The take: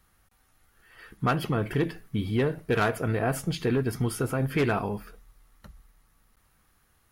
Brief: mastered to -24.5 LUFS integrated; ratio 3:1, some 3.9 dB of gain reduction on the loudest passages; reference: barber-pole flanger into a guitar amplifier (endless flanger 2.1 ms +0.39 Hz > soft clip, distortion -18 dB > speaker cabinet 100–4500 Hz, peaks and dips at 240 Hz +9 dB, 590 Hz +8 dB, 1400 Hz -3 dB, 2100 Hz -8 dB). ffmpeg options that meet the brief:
-filter_complex "[0:a]acompressor=threshold=-26dB:ratio=3,asplit=2[a][b];[b]adelay=2.1,afreqshift=0.39[c];[a][c]amix=inputs=2:normalize=1,asoftclip=threshold=-25dB,highpass=100,equalizer=f=240:t=q:w=4:g=9,equalizer=f=590:t=q:w=4:g=8,equalizer=f=1.4k:t=q:w=4:g=-3,equalizer=f=2.1k:t=q:w=4:g=-8,lowpass=f=4.5k:w=0.5412,lowpass=f=4.5k:w=1.3066,volume=9dB"

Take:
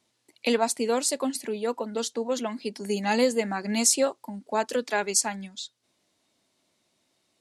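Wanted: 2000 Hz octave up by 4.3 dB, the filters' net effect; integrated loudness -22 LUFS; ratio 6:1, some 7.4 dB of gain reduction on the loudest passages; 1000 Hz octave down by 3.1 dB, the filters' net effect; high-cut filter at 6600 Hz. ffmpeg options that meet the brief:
-af "lowpass=6.6k,equalizer=f=1k:t=o:g=-5.5,equalizer=f=2k:t=o:g=7,acompressor=threshold=-26dB:ratio=6,volume=10dB"

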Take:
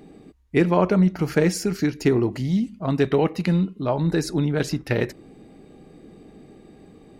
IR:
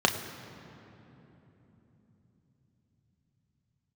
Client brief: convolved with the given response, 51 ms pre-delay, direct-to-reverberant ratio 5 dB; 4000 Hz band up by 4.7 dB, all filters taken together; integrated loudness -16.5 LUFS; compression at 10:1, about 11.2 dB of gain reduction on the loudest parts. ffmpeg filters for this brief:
-filter_complex "[0:a]equalizer=f=4k:t=o:g=6,acompressor=threshold=-25dB:ratio=10,asplit=2[a][b];[1:a]atrim=start_sample=2205,adelay=51[c];[b][c]afir=irnorm=-1:irlink=0,volume=-19dB[d];[a][d]amix=inputs=2:normalize=0,volume=12dB"

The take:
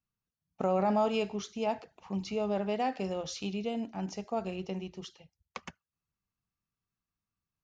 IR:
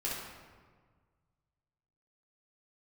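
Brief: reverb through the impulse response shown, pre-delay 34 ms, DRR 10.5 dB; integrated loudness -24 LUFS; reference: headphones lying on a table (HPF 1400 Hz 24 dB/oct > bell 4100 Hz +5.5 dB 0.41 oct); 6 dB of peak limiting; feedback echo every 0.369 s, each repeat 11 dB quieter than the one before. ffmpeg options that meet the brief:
-filter_complex "[0:a]alimiter=level_in=0.5dB:limit=-24dB:level=0:latency=1,volume=-0.5dB,aecho=1:1:369|738|1107:0.282|0.0789|0.0221,asplit=2[a][b];[1:a]atrim=start_sample=2205,adelay=34[c];[b][c]afir=irnorm=-1:irlink=0,volume=-15dB[d];[a][d]amix=inputs=2:normalize=0,highpass=f=1.4k:w=0.5412,highpass=f=1.4k:w=1.3066,equalizer=f=4.1k:t=o:w=0.41:g=5.5,volume=21dB"

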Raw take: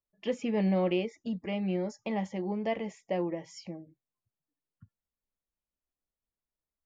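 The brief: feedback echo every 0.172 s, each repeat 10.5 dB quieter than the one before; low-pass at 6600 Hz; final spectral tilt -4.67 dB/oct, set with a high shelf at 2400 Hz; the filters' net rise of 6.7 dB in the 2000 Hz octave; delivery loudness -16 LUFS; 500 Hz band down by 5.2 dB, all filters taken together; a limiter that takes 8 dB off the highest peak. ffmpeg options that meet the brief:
-af "lowpass=6.6k,equalizer=f=500:t=o:g=-7.5,equalizer=f=2k:t=o:g=4.5,highshelf=f=2.4k:g=7,alimiter=level_in=1dB:limit=-24dB:level=0:latency=1,volume=-1dB,aecho=1:1:172|344|516:0.299|0.0896|0.0269,volume=19dB"

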